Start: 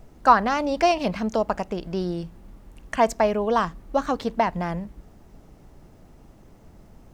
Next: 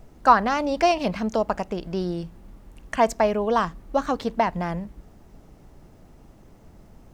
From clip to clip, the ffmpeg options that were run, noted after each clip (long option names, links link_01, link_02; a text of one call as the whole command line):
ffmpeg -i in.wav -af anull out.wav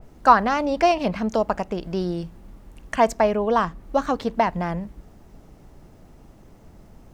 ffmpeg -i in.wav -af "adynamicequalizer=threshold=0.0112:dfrequency=3000:dqfactor=0.7:tfrequency=3000:tqfactor=0.7:attack=5:release=100:ratio=0.375:range=3:mode=cutabove:tftype=highshelf,volume=1.5dB" out.wav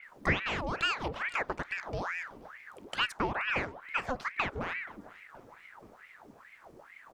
ffmpeg -i in.wav -af "acompressor=threshold=-29dB:ratio=1.5,aecho=1:1:477|954|1431|1908:0.0794|0.0429|0.0232|0.0125,aeval=exprs='val(0)*sin(2*PI*1200*n/s+1200*0.8/2.3*sin(2*PI*2.3*n/s))':channel_layout=same,volume=-4.5dB" out.wav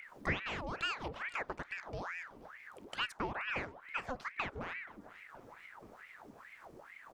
ffmpeg -i in.wav -af "acompressor=mode=upward:threshold=-39dB:ratio=2.5,volume=-6.5dB" out.wav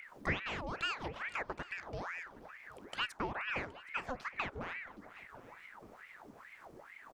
ffmpeg -i in.wav -af "aecho=1:1:769:0.0944" out.wav